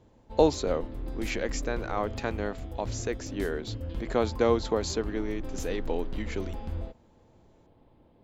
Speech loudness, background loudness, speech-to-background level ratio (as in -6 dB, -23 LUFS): -31.0 LUFS, -39.0 LUFS, 8.0 dB